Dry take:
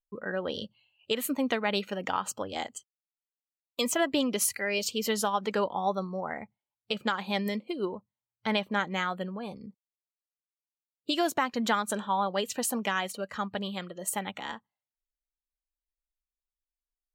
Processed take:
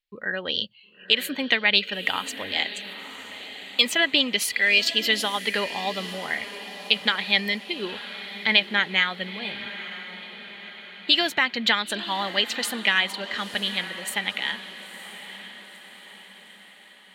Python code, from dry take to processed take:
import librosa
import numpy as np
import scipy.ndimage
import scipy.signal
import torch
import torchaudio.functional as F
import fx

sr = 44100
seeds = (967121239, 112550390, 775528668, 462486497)

y = fx.band_shelf(x, sr, hz=2800.0, db=15.0, octaves=1.7)
y = fx.echo_diffused(y, sr, ms=962, feedback_pct=52, wet_db=-13.0)
y = F.gain(torch.from_numpy(y), -1.0).numpy()